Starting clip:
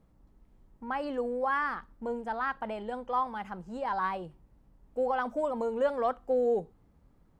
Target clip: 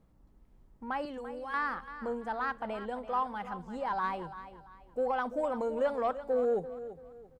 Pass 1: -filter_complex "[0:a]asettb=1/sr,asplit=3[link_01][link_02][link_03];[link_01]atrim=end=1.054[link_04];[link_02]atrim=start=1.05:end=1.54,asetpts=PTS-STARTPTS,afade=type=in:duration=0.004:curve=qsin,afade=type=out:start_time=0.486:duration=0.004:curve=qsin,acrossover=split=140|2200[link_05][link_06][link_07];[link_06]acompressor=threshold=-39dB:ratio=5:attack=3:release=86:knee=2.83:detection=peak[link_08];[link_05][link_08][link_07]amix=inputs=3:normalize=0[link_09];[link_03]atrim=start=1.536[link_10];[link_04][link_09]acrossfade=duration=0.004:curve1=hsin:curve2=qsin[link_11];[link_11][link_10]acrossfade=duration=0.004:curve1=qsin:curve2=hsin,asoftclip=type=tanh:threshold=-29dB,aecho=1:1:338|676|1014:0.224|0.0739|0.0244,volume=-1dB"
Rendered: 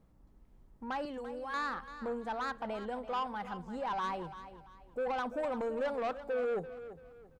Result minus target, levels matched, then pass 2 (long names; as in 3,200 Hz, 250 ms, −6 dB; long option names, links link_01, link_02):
soft clipping: distortion +14 dB
-filter_complex "[0:a]asettb=1/sr,asplit=3[link_01][link_02][link_03];[link_01]atrim=end=1.054[link_04];[link_02]atrim=start=1.05:end=1.54,asetpts=PTS-STARTPTS,afade=type=in:duration=0.004:curve=qsin,afade=type=out:start_time=0.486:duration=0.004:curve=qsin,acrossover=split=140|2200[link_05][link_06][link_07];[link_06]acompressor=threshold=-39dB:ratio=5:attack=3:release=86:knee=2.83:detection=peak[link_08];[link_05][link_08][link_07]amix=inputs=3:normalize=0[link_09];[link_03]atrim=start=1.536[link_10];[link_04][link_09]acrossfade=duration=0.004:curve1=hsin:curve2=qsin[link_11];[link_11][link_10]acrossfade=duration=0.004:curve1=qsin:curve2=hsin,asoftclip=type=tanh:threshold=-18.5dB,aecho=1:1:338|676|1014:0.224|0.0739|0.0244,volume=-1dB"